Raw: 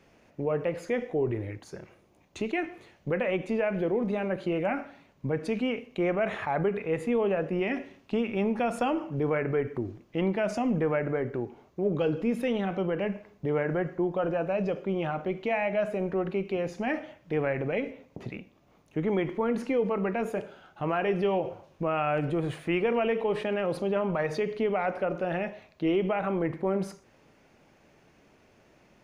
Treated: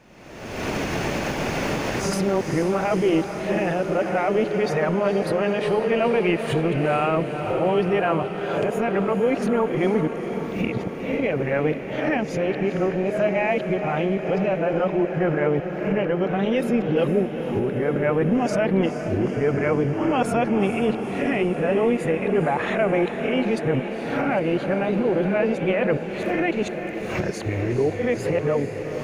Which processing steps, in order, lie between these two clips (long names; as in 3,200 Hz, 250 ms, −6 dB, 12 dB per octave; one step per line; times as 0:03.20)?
played backwards from end to start
camcorder AGC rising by 44 dB per second
feedback delay with all-pass diffusion 462 ms, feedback 72%, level −9 dB
level +5.5 dB